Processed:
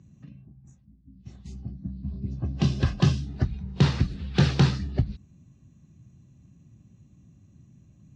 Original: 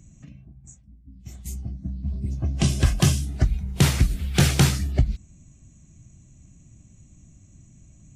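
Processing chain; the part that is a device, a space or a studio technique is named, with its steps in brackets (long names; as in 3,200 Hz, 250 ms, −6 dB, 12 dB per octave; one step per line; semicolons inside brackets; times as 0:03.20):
guitar cabinet (loudspeaker in its box 98–4,300 Hz, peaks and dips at 310 Hz −3 dB, 660 Hz −7 dB, 1,400 Hz −4 dB, 2,200 Hz −10 dB, 3,200 Hz −6 dB)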